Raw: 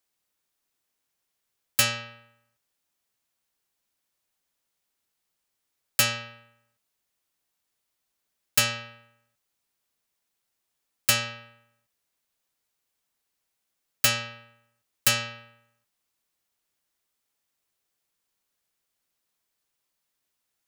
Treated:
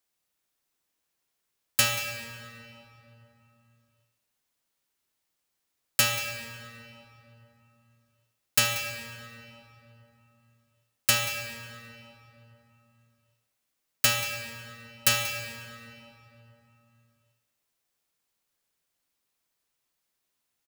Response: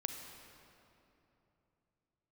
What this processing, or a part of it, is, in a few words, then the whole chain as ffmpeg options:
cave: -filter_complex "[0:a]aecho=1:1:184:0.158[link_01];[1:a]atrim=start_sample=2205[link_02];[link_01][link_02]afir=irnorm=-1:irlink=0"

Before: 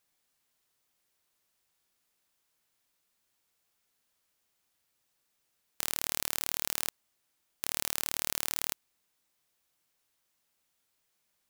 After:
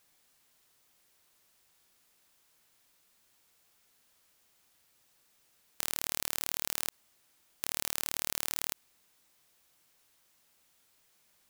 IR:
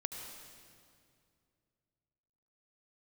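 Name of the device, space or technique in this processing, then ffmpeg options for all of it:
de-esser from a sidechain: -filter_complex "[0:a]asplit=2[link_01][link_02];[link_02]highpass=frequency=6400:width=0.5412,highpass=frequency=6400:width=1.3066,apad=whole_len=506837[link_03];[link_01][link_03]sidechaincompress=threshold=-39dB:ratio=6:attack=2.2:release=34,volume=8.5dB"

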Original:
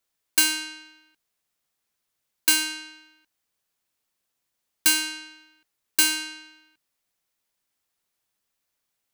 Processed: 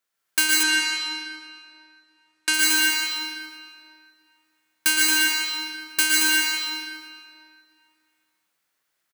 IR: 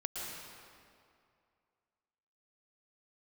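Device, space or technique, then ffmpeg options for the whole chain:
stadium PA: -filter_complex "[0:a]highpass=frequency=140:poles=1,equalizer=frequency=1600:width_type=o:width=1.1:gain=6,aecho=1:1:151.6|224.5|256.6:0.501|0.562|0.251[link_01];[1:a]atrim=start_sample=2205[link_02];[link_01][link_02]afir=irnorm=-1:irlink=0,asettb=1/sr,asplit=3[link_03][link_04][link_05];[link_03]atrim=end=0.634[link_06];[link_04]atrim=start=0.63:end=2.54,asetpts=PTS-STARTPTS,afade=type=in:duration=0.004:curve=qsin,afade=type=out:start_time=1.906:duration=0.004:curve=qsin,lowpass=8300[link_07];[link_05]atrim=start=2.536[link_08];[link_06][link_07]acrossfade=duration=0.004:curve1=hsin:curve2=qsin[link_09];[link_09][link_08]acrossfade=duration=0.004:curve1=qsin:curve2=hsin"

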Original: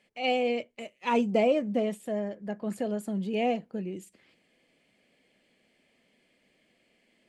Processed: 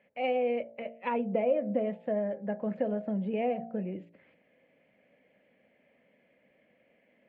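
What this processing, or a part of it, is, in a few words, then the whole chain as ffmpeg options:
bass amplifier: -af "bandreject=frequency=57.41:width_type=h:width=4,bandreject=frequency=114.82:width_type=h:width=4,bandreject=frequency=172.23:width_type=h:width=4,bandreject=frequency=229.64:width_type=h:width=4,bandreject=frequency=287.05:width_type=h:width=4,bandreject=frequency=344.46:width_type=h:width=4,bandreject=frequency=401.87:width_type=h:width=4,bandreject=frequency=459.28:width_type=h:width=4,bandreject=frequency=516.69:width_type=h:width=4,bandreject=frequency=574.1:width_type=h:width=4,bandreject=frequency=631.51:width_type=h:width=4,bandreject=frequency=688.92:width_type=h:width=4,bandreject=frequency=746.33:width_type=h:width=4,bandreject=frequency=803.74:width_type=h:width=4,bandreject=frequency=861.15:width_type=h:width=4,acompressor=threshold=-30dB:ratio=5,highpass=74,equalizer=frequency=360:width_type=q:width=4:gain=-6,equalizer=frequency=550:width_type=q:width=4:gain=8,equalizer=frequency=1200:width_type=q:width=4:gain=-4,lowpass=frequency=2300:width=0.5412,lowpass=frequency=2300:width=1.3066,volume=2dB"

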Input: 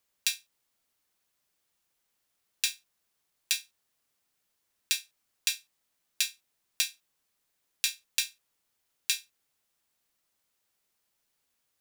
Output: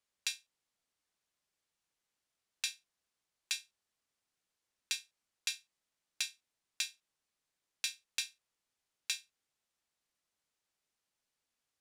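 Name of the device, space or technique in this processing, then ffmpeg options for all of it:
overflowing digital effects unit: -af "aeval=exprs='(mod(2.99*val(0)+1,2)-1)/2.99':channel_layout=same,lowpass=9200,volume=-6.5dB"

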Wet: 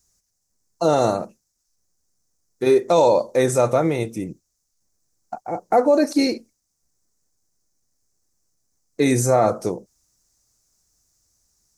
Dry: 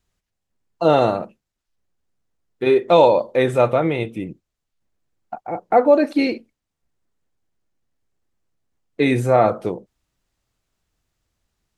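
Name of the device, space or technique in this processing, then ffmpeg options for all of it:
over-bright horn tweeter: -af "highshelf=frequency=4300:width_type=q:width=3:gain=11.5,alimiter=limit=-7dB:level=0:latency=1:release=29"

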